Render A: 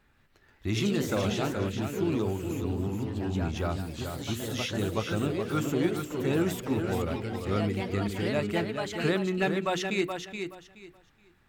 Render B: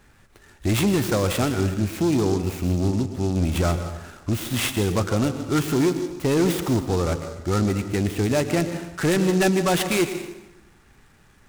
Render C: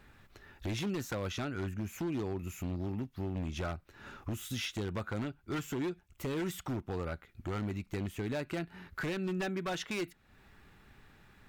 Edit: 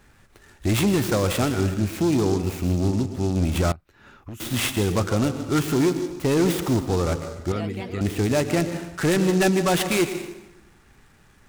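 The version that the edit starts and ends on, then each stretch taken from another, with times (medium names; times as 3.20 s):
B
3.72–4.40 s: from C
7.52–8.01 s: from A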